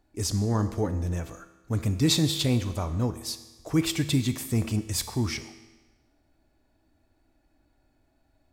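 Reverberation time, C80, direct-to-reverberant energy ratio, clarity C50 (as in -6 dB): 1.2 s, 13.0 dB, 9.5 dB, 11.5 dB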